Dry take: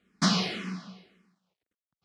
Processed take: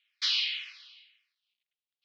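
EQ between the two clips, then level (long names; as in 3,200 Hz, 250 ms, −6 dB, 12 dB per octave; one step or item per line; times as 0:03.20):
Chebyshev high-pass filter 2,700 Hz, order 3
low-pass filter 4,100 Hz 24 dB per octave
+7.0 dB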